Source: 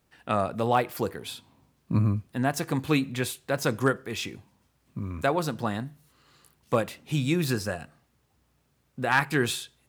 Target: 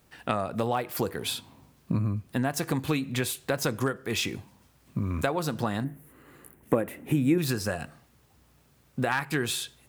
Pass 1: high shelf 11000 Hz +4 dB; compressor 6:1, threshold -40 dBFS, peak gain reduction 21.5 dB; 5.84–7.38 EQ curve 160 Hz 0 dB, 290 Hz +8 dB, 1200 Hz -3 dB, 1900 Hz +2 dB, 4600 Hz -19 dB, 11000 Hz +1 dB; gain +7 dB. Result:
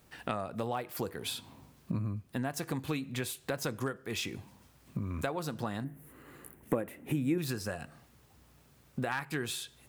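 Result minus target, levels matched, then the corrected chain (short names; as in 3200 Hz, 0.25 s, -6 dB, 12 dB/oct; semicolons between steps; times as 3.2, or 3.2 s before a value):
compressor: peak gain reduction +7 dB
high shelf 11000 Hz +4 dB; compressor 6:1, threshold -31.5 dBFS, peak gain reduction 14 dB; 5.84–7.38 EQ curve 160 Hz 0 dB, 290 Hz +8 dB, 1200 Hz -3 dB, 1900 Hz +2 dB, 4600 Hz -19 dB, 11000 Hz +1 dB; gain +7 dB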